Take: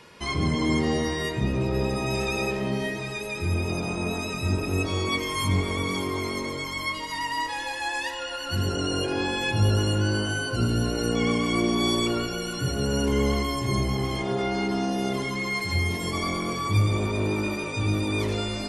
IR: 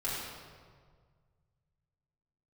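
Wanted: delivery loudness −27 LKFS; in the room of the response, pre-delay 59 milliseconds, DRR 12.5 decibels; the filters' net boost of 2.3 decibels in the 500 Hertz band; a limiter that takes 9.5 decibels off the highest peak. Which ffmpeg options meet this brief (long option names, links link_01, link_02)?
-filter_complex "[0:a]equalizer=frequency=500:width_type=o:gain=3,alimiter=limit=-20.5dB:level=0:latency=1,asplit=2[link_01][link_02];[1:a]atrim=start_sample=2205,adelay=59[link_03];[link_02][link_03]afir=irnorm=-1:irlink=0,volume=-18.5dB[link_04];[link_01][link_04]amix=inputs=2:normalize=0,volume=2dB"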